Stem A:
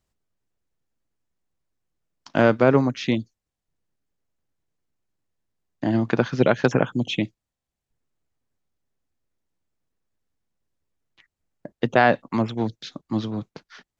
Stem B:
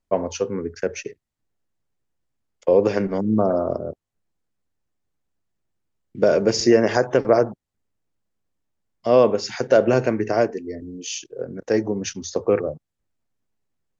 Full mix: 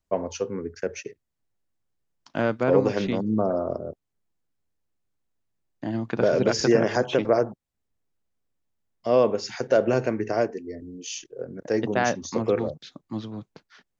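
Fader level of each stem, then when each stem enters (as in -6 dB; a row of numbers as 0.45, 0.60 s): -7.0, -4.5 dB; 0.00, 0.00 s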